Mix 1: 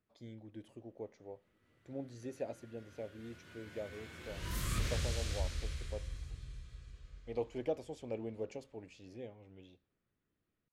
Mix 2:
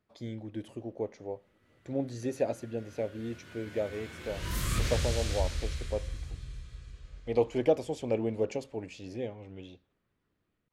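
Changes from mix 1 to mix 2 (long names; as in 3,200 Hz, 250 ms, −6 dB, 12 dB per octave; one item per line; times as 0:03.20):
speech +11.0 dB
background +5.5 dB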